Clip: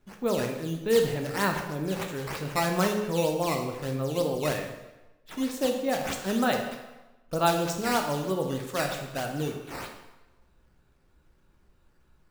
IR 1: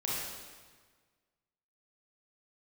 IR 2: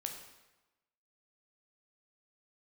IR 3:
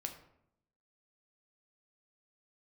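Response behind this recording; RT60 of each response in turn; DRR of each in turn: 2; 1.5 s, 1.1 s, 0.75 s; -6.5 dB, 3.0 dB, 4.0 dB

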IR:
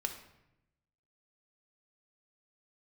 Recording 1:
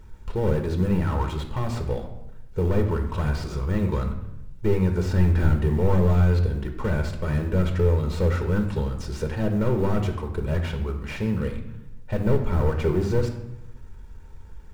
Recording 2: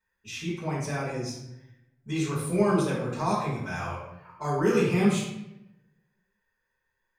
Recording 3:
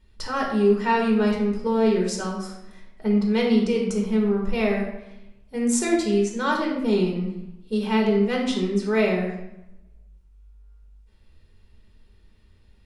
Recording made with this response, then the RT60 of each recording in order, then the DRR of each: 1; 0.85 s, 0.85 s, 0.85 s; 4.5 dB, -9.5 dB, -2.0 dB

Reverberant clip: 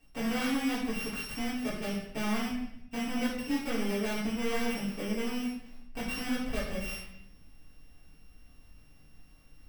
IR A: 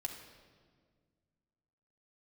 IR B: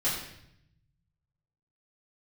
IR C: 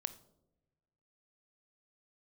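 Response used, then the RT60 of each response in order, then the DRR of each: B; 1.8 s, 0.75 s, no single decay rate; 1.5 dB, -10.0 dB, 12.5 dB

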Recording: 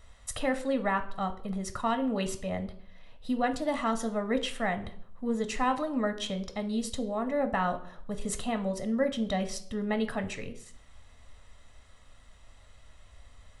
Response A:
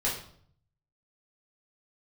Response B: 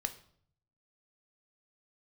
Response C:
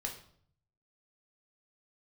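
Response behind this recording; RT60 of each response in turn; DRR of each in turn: B; 0.60 s, 0.60 s, 0.60 s; -6.5 dB, 7.5 dB, 0.5 dB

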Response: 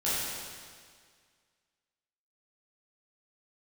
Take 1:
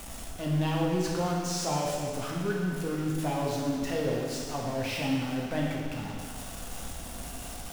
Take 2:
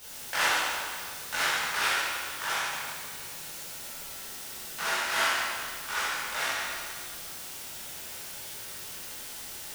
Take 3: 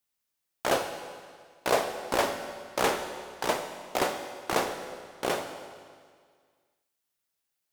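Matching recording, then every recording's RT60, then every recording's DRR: 2; 1.9 s, 1.9 s, 1.9 s; -2.5 dB, -11.0 dB, 6.0 dB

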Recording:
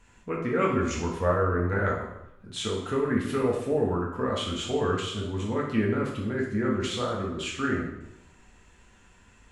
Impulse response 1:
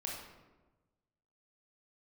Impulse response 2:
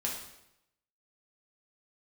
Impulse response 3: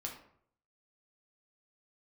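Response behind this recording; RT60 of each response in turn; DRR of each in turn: 2; 1.2 s, 0.85 s, 0.65 s; -2.5 dB, -3.0 dB, -1.0 dB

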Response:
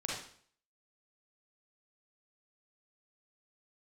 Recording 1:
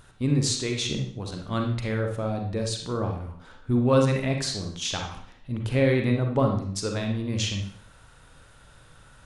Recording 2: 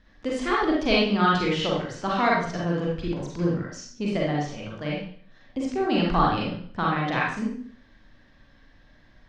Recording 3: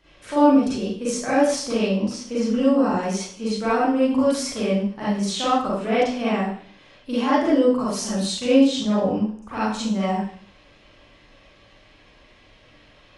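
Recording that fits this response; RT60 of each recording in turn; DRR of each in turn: 2; 0.55 s, 0.55 s, 0.55 s; 2.0 dB, -4.5 dB, -11.0 dB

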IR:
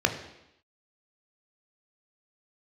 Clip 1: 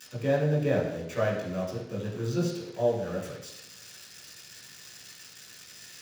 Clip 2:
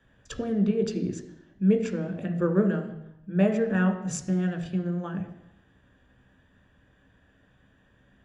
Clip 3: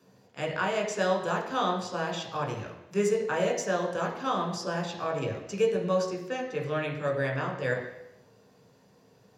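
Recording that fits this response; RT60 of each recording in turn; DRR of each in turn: 2; 0.85 s, 0.85 s, 0.85 s; -6.0 dB, 4.5 dB, -1.0 dB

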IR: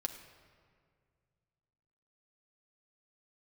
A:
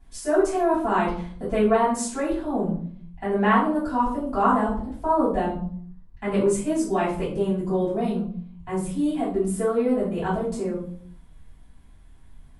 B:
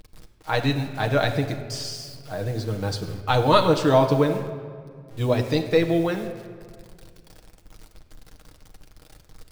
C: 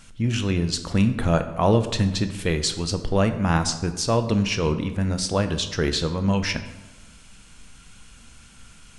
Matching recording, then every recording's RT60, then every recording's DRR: B; 0.55 s, 2.0 s, 1.3 s; -11.0 dB, 3.5 dB, 8.0 dB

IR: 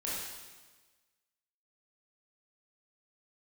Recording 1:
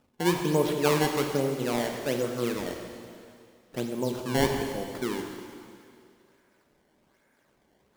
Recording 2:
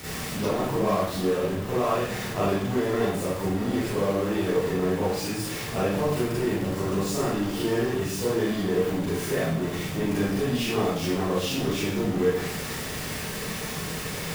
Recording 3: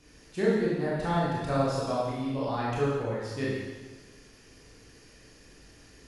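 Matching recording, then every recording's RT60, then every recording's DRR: 3; 2.4 s, 0.65 s, 1.3 s; 3.0 dB, -9.0 dB, -7.5 dB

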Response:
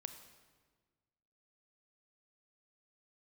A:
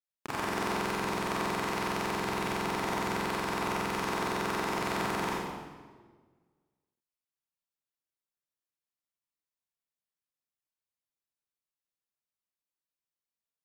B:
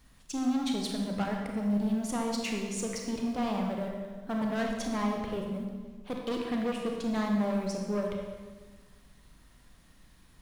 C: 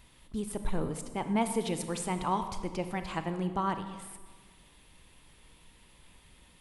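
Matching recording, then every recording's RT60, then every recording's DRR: C; 1.5 s, 1.5 s, 1.5 s; -8.5 dB, 0.5 dB, 8.5 dB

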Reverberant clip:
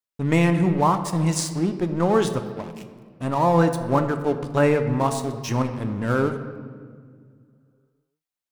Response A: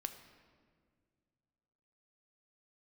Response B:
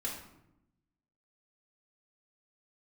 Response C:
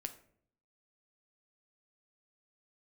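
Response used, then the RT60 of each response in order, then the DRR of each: A; 1.9 s, 0.85 s, 0.60 s; 7.0 dB, -6.5 dB, 7.5 dB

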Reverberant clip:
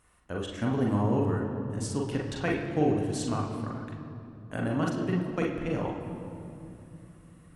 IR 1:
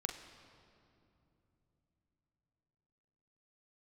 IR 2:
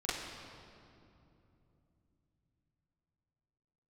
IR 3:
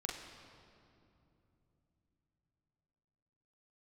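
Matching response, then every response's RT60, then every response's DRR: 3; 3.0 s, 2.9 s, 2.9 s; 3.5 dB, -10.5 dB, -2.0 dB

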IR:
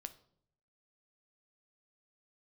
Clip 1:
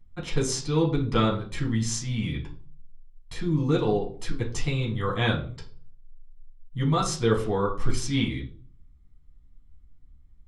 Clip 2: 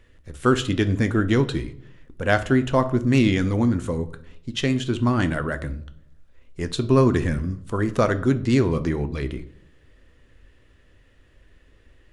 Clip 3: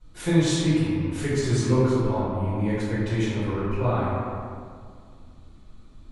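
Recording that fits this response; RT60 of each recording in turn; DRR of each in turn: 2; 0.45 s, 0.65 s, 2.1 s; -3.5 dB, 9.5 dB, -14.0 dB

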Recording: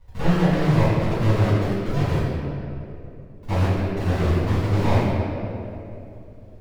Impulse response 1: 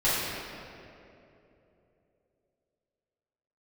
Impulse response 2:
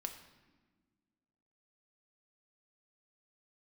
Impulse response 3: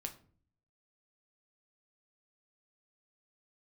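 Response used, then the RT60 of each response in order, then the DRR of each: 1; 3.0 s, 1.4 s, 0.45 s; -11.5 dB, 4.5 dB, 4.0 dB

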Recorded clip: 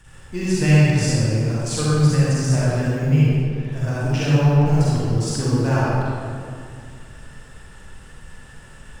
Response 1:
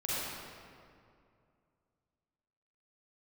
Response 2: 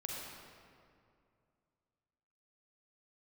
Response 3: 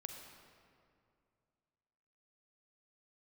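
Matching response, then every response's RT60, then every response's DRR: 1; 2.4 s, 2.4 s, 2.4 s; -9.5 dB, -3.0 dB, 3.5 dB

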